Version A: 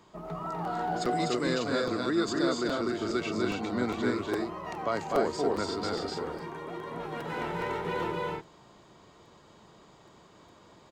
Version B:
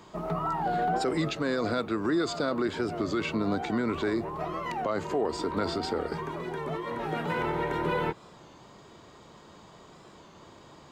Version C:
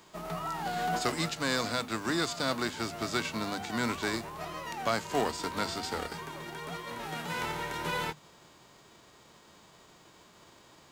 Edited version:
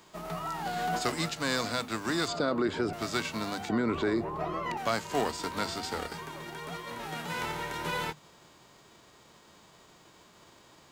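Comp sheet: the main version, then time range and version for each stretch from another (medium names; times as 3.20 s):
C
2.28–2.93 s: from B
3.69–4.77 s: from B
not used: A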